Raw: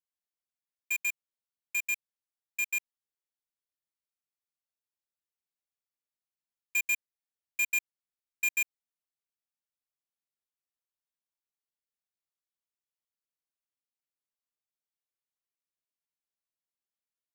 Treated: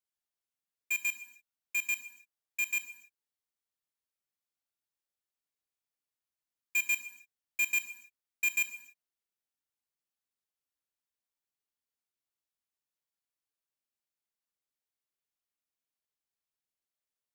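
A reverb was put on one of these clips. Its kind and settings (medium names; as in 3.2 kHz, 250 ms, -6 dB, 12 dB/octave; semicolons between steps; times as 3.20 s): gated-style reverb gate 320 ms falling, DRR 8.5 dB; trim -1 dB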